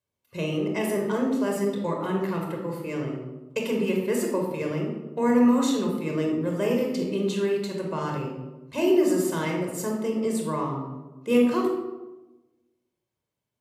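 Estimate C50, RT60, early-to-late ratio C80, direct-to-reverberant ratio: 3.0 dB, 1.1 s, 6.0 dB, 0.5 dB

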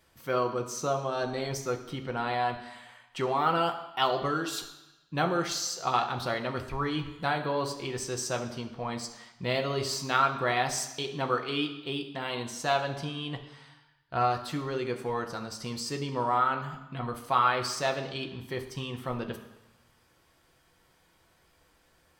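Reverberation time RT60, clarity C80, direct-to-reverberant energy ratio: 1.0 s, 12.5 dB, 3.5 dB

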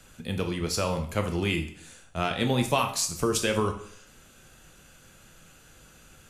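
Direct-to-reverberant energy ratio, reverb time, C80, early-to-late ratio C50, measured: 5.0 dB, 0.60 s, 13.5 dB, 10.0 dB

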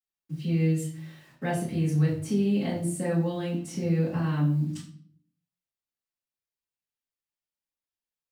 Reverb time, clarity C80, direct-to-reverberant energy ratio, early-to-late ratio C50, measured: 0.55 s, 10.0 dB, −12.5 dB, 6.0 dB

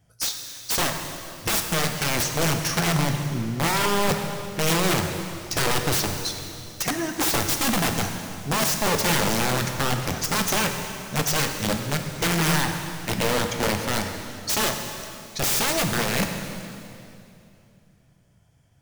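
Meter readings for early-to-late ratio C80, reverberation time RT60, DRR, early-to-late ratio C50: 6.5 dB, 2.7 s, 4.0 dB, 5.5 dB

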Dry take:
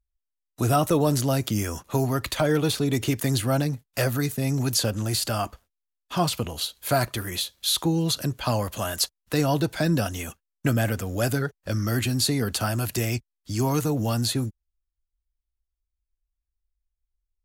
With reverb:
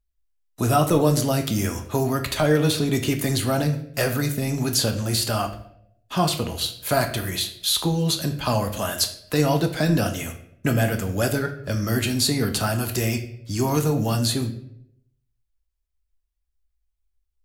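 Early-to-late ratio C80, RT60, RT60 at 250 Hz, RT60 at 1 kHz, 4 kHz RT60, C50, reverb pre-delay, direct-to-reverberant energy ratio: 13.0 dB, 0.75 s, 0.85 s, 0.60 s, 0.55 s, 10.5 dB, 5 ms, 5.0 dB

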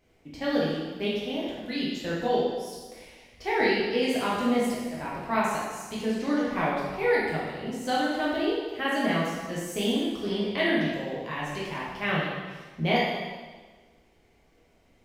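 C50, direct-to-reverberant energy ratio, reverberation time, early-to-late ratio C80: −1.0 dB, −7.0 dB, 1.4 s, 2.0 dB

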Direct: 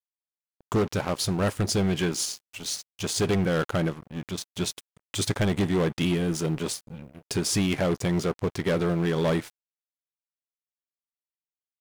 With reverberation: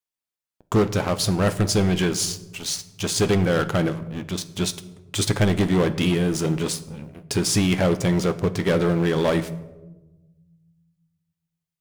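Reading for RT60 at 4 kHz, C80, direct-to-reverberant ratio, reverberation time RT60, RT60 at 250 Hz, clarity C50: 0.60 s, 17.5 dB, 10.5 dB, 1.1 s, 1.6 s, 15.5 dB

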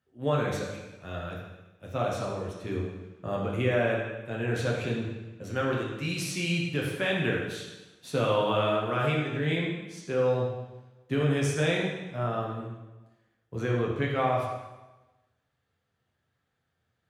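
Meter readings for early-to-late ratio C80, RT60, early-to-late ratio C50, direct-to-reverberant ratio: 4.0 dB, 1.1 s, 1.5 dB, −3.0 dB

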